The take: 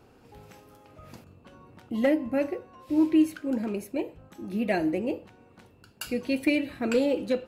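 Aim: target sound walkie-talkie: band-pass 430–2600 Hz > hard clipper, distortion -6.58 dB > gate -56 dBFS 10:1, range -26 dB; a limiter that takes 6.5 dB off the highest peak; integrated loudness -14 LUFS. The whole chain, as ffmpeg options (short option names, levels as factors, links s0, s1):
-af "alimiter=limit=0.112:level=0:latency=1,highpass=430,lowpass=2600,asoftclip=type=hard:threshold=0.0178,agate=range=0.0501:threshold=0.00158:ratio=10,volume=20"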